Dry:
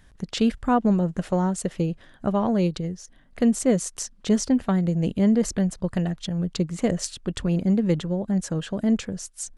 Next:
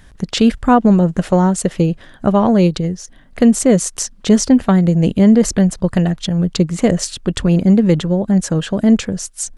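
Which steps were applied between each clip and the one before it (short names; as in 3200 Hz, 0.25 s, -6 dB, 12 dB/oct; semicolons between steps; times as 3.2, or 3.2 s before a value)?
maximiser +11 dB; gain -1 dB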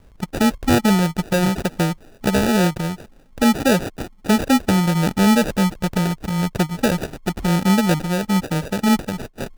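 sample-and-hold 41×; gain -5 dB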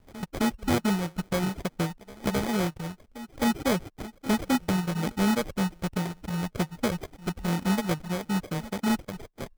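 pre-echo 0.262 s -16.5 dB; sample-and-hold 16×; reverb removal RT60 0.71 s; gain -8.5 dB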